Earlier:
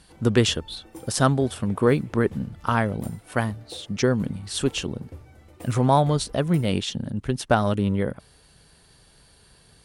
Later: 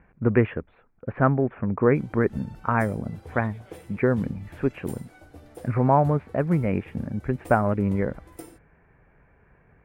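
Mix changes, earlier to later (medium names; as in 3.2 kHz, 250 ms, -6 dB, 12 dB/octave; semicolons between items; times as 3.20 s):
speech: add Chebyshev low-pass 2.4 kHz, order 6; background: entry +1.85 s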